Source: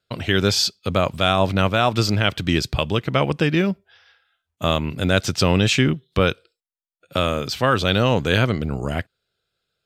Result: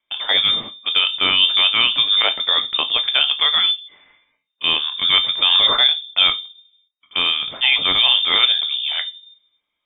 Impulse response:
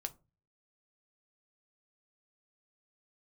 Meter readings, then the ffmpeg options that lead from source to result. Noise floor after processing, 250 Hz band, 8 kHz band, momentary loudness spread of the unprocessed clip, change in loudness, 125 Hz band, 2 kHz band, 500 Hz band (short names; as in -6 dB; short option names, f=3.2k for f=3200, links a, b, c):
-78 dBFS, -18.0 dB, under -40 dB, 7 LU, +5.5 dB, under -20 dB, +3.0 dB, -13.0 dB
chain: -filter_complex "[0:a]acrusher=bits=7:mode=log:mix=0:aa=0.000001[a];[1:a]atrim=start_sample=2205,asetrate=32193,aresample=44100[b];[a][b]afir=irnorm=-1:irlink=0,lowpass=f=3.1k:t=q:w=0.5098,lowpass=f=3.1k:t=q:w=0.6013,lowpass=f=3.1k:t=q:w=0.9,lowpass=f=3.1k:t=q:w=2.563,afreqshift=-3700,volume=2dB"